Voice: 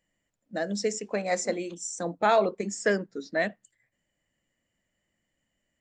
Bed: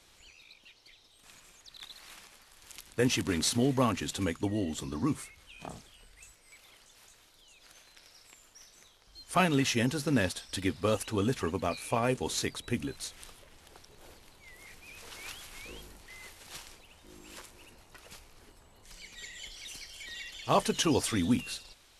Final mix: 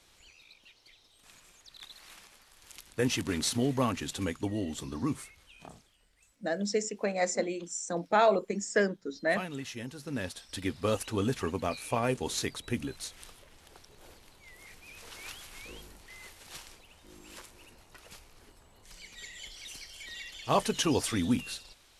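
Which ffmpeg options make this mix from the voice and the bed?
-filter_complex "[0:a]adelay=5900,volume=0.841[s0];[1:a]volume=3.16,afade=t=out:st=5.27:d=0.69:silence=0.298538,afade=t=in:st=9.96:d=0.96:silence=0.266073[s1];[s0][s1]amix=inputs=2:normalize=0"

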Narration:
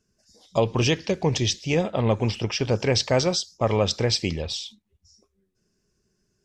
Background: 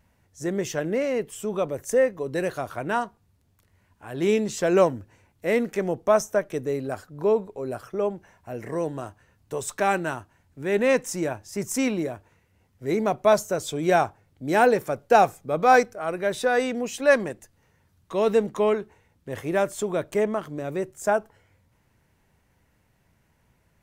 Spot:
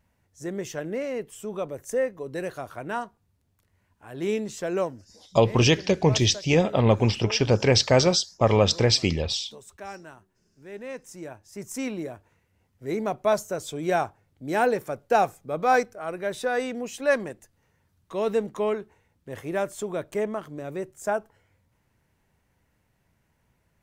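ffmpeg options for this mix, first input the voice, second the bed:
-filter_complex "[0:a]adelay=4800,volume=1.33[s0];[1:a]volume=2.37,afade=t=out:st=4.42:d=0.96:silence=0.266073,afade=t=in:st=10.93:d=1.37:silence=0.237137[s1];[s0][s1]amix=inputs=2:normalize=0"

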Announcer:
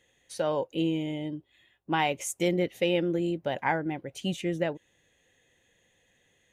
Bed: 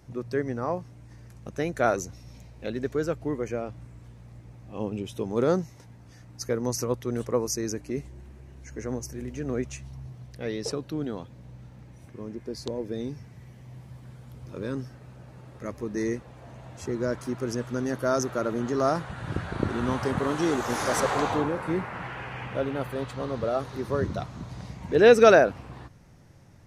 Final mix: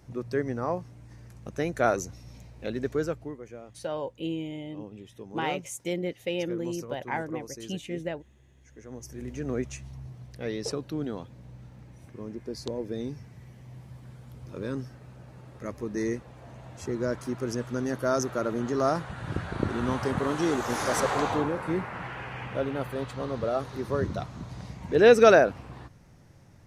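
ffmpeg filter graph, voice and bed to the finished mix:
-filter_complex "[0:a]adelay=3450,volume=0.596[s0];[1:a]volume=3.55,afade=t=out:st=3:d=0.37:silence=0.251189,afade=t=in:st=8.89:d=0.42:silence=0.266073[s1];[s0][s1]amix=inputs=2:normalize=0"

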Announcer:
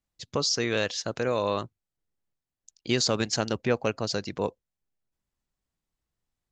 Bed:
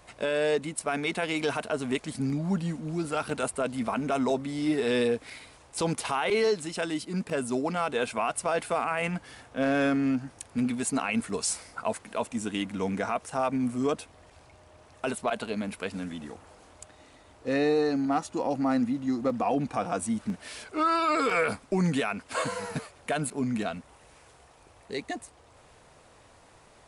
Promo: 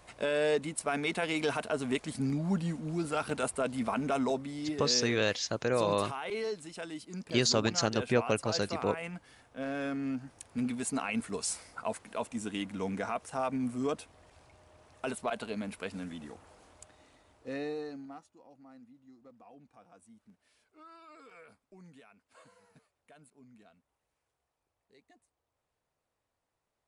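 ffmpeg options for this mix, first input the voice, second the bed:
-filter_complex "[0:a]adelay=4450,volume=0.794[s0];[1:a]volume=1.41,afade=t=out:st=4.09:d=0.69:silence=0.398107,afade=t=in:st=9.82:d=0.85:silence=0.530884,afade=t=out:st=16.65:d=1.67:silence=0.0630957[s1];[s0][s1]amix=inputs=2:normalize=0"

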